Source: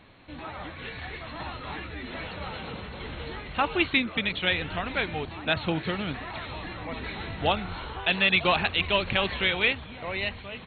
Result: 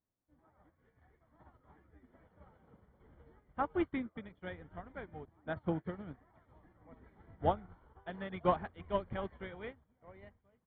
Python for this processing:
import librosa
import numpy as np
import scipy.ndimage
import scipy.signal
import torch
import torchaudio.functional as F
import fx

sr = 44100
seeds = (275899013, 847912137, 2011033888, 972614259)

y = scipy.signal.savgol_filter(x, 41, 4, mode='constant')
y = fx.tilt_shelf(y, sr, db=4.0, hz=970.0)
y = fx.upward_expand(y, sr, threshold_db=-43.0, expansion=2.5)
y = y * librosa.db_to_amplitude(-4.5)